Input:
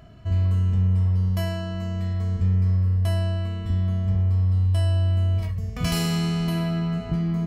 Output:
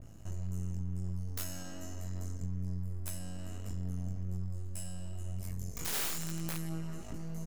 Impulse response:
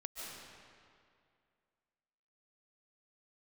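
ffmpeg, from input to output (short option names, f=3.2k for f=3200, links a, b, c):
-filter_complex "[0:a]equalizer=f=6.9k:w=6.2:g=7,acrossover=split=310|1300|3900[a][b][c][d];[a]acompressor=mode=upward:threshold=-33dB:ratio=2.5[e];[b]alimiter=level_in=12dB:limit=-24dB:level=0:latency=1,volume=-12dB[f];[e][f][c][d]amix=inputs=4:normalize=0,acompressor=threshold=-26dB:ratio=16,aexciter=amount=13.1:drive=1.6:freq=5.7k,aeval=exprs='max(val(0),0)':c=same,flanger=delay=17.5:depth=4.9:speed=0.61,asetrate=42845,aresample=44100,atempo=1.0293,aeval=exprs='(mod(12.6*val(0)+1,2)-1)/12.6':c=same,adynamicequalizer=threshold=0.00282:dfrequency=2800:dqfactor=0.7:tfrequency=2800:tqfactor=0.7:attack=5:release=100:ratio=0.375:range=2:mode=cutabove:tftype=highshelf,volume=-4dB"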